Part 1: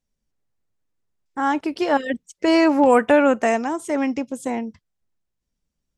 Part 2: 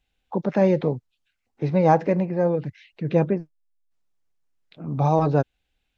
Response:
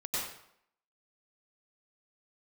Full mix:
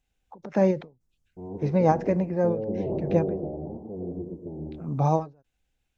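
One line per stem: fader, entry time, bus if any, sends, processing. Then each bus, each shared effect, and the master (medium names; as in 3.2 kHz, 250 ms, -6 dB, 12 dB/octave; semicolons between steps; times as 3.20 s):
-16.5 dB, 0.00 s, send -3 dB, cycle switcher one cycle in 3, inverted; Gaussian low-pass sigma 16 samples; tilt EQ -2 dB/octave
-2.0 dB, 0.00 s, no send, resonant high shelf 4.9 kHz +7.5 dB, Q 1.5; endings held to a fixed fall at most 200 dB/s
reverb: on, RT60 0.70 s, pre-delay 88 ms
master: treble shelf 3.8 kHz -6.5 dB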